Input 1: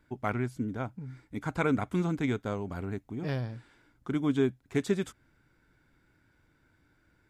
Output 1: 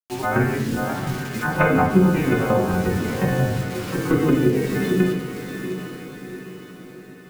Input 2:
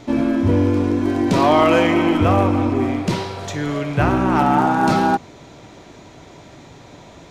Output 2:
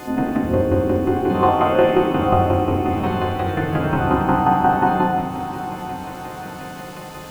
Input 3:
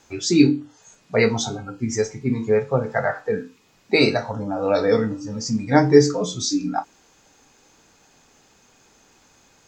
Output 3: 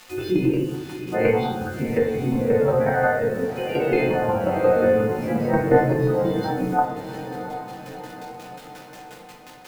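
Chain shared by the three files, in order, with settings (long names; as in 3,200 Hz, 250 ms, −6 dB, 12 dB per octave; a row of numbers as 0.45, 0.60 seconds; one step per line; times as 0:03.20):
every partial snapped to a pitch grid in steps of 3 semitones
delay with pitch and tempo change per echo 90 ms, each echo +1 semitone, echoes 3, each echo −6 dB
Gaussian smoothing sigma 3.9 samples
square-wave tremolo 5.6 Hz, depth 65%, duty 20%
downward compressor 2 to 1, threshold −28 dBFS
transient designer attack +2 dB, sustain +7 dB
bit reduction 9 bits
feedback delay with all-pass diffusion 718 ms, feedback 50%, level −11.5 dB
rectangular room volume 150 cubic metres, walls mixed, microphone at 0.95 metres
one half of a high-frequency compander encoder only
normalise the peak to −3 dBFS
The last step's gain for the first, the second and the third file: +10.5, +4.5, +3.5 decibels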